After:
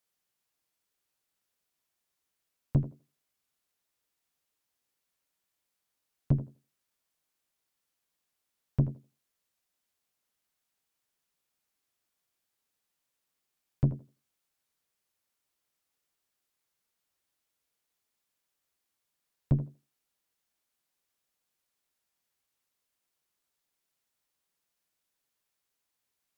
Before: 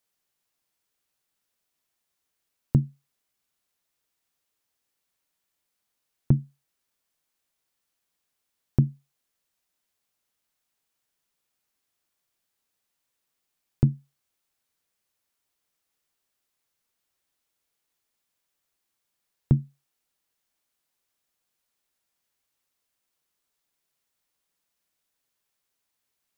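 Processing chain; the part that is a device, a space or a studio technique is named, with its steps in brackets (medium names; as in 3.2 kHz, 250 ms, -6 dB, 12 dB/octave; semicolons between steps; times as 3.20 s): rockabilly slapback (valve stage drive 17 dB, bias 0.6; tape echo 80 ms, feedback 21%, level -9.5 dB, low-pass 1.2 kHz)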